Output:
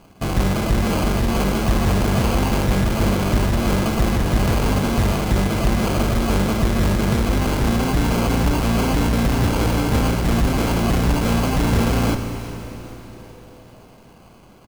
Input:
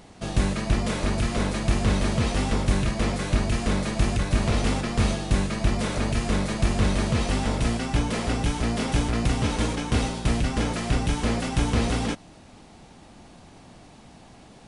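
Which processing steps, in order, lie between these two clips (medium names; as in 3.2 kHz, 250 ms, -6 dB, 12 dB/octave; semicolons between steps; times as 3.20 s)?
6.70–7.58 s: low-pass 1.5 kHz; in parallel at -0.5 dB: Schmitt trigger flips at -33.5 dBFS; on the sum: sample-and-hold 24×; on a send: frequency-shifting echo 400 ms, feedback 58%, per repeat -140 Hz, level -18.5 dB; on the sum: Schroeder reverb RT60 3.5 s, combs from 31 ms, DRR 6.5 dB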